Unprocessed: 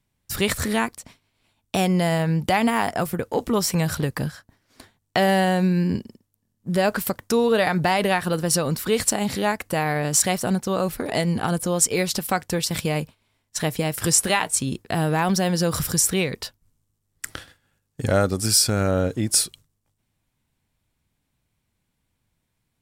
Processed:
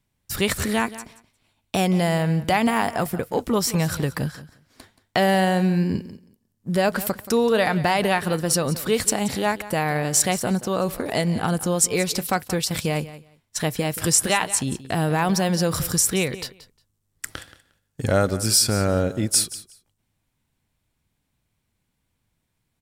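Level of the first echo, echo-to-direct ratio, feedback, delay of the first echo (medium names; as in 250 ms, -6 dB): -16.0 dB, -16.0 dB, 16%, 178 ms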